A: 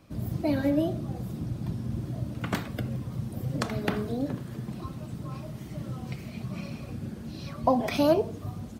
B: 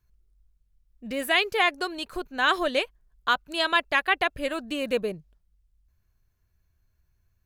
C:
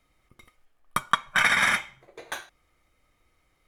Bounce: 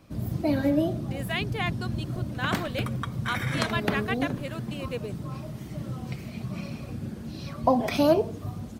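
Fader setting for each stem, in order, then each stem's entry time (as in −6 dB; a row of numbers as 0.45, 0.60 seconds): +1.5, −8.5, −13.5 decibels; 0.00, 0.00, 1.90 seconds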